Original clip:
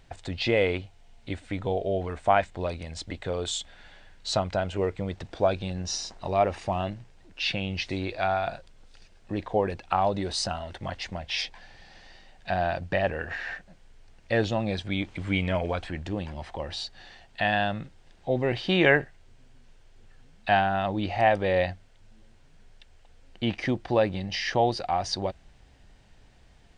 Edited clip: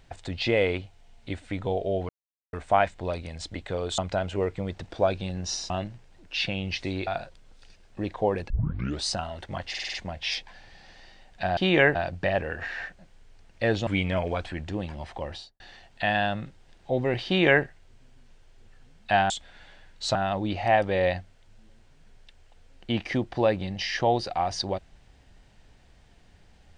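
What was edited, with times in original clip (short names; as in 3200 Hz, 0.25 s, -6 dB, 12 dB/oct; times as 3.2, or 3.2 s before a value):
2.09 insert silence 0.44 s
3.54–4.39 move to 20.68
6.11–6.76 cut
8.13–8.39 cut
9.82 tape start 0.53 s
11.01 stutter 0.05 s, 6 plays
14.56–15.25 cut
16.65–16.98 studio fade out
18.64–19.02 copy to 12.64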